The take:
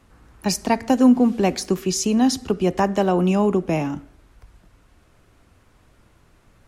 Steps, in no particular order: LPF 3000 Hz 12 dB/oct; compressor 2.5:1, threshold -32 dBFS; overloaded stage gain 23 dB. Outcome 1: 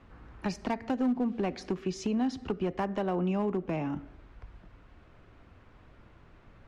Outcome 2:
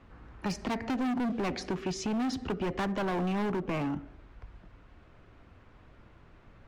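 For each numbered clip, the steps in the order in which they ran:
LPF > compressor > overloaded stage; LPF > overloaded stage > compressor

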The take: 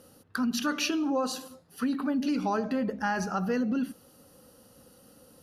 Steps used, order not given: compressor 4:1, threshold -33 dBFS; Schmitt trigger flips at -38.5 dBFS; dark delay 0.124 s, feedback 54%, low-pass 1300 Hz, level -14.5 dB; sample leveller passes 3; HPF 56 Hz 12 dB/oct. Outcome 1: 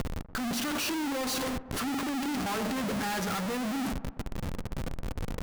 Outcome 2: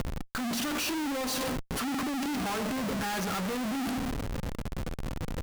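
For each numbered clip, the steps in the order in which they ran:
sample leveller > HPF > Schmitt trigger > compressor > dark delay; HPF > sample leveller > dark delay > Schmitt trigger > compressor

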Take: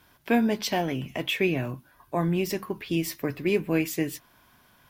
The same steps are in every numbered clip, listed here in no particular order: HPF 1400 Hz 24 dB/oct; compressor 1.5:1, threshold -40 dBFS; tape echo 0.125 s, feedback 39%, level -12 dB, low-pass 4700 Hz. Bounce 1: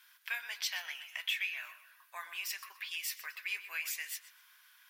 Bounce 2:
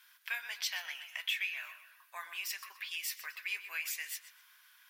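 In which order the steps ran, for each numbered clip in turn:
HPF > compressor > tape echo; HPF > tape echo > compressor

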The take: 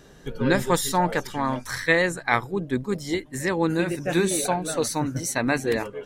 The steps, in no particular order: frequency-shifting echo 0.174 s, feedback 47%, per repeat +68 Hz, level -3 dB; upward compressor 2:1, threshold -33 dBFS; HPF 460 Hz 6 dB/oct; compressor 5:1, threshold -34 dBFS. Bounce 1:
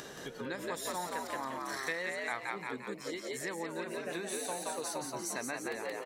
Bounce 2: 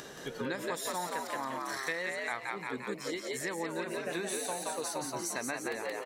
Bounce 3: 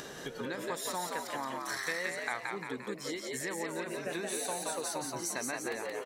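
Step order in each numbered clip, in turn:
upward compressor > frequency-shifting echo > compressor > HPF; upward compressor > HPF > frequency-shifting echo > compressor; compressor > HPF > frequency-shifting echo > upward compressor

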